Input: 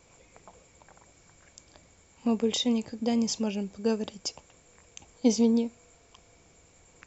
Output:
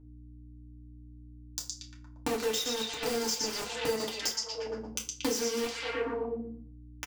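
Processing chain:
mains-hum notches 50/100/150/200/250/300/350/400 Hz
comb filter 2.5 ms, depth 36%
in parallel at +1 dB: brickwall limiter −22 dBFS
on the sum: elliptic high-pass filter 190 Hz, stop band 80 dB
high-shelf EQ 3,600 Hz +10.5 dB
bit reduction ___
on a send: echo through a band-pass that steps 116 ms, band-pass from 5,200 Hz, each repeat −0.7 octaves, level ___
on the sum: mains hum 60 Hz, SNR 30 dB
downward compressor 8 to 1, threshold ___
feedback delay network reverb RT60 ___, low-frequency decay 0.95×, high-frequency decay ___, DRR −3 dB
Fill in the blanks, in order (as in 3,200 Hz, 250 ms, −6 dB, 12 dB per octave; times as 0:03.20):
4 bits, −0.5 dB, −34 dBFS, 0.37 s, 0.75×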